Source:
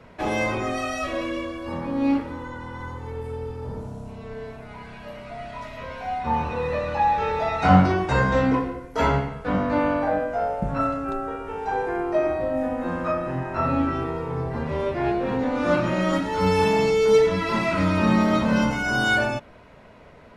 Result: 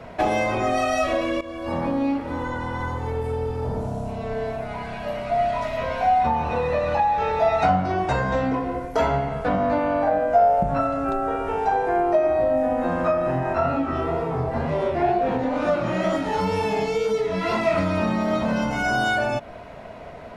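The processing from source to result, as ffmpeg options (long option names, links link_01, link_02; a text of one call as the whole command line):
ffmpeg -i in.wav -filter_complex "[0:a]asplit=3[link_01][link_02][link_03];[link_01]afade=type=out:start_time=13.52:duration=0.02[link_04];[link_02]flanger=delay=18.5:depth=8:speed=2.1,afade=type=in:start_time=13.52:duration=0.02,afade=type=out:start_time=17.77:duration=0.02[link_05];[link_03]afade=type=in:start_time=17.77:duration=0.02[link_06];[link_04][link_05][link_06]amix=inputs=3:normalize=0,asplit=2[link_07][link_08];[link_07]atrim=end=1.41,asetpts=PTS-STARTPTS,afade=type=out:start_time=1.406:duration=0.004:curve=hsin:silence=0.177828[link_09];[link_08]atrim=start=1.41,asetpts=PTS-STARTPTS,afade=type=in:duration=0.48:silence=0.177828[link_10];[link_09][link_10]concat=n=2:v=0:a=1,acompressor=threshold=-28dB:ratio=6,equalizer=frequency=690:width=4.3:gain=10,volume=6.5dB" out.wav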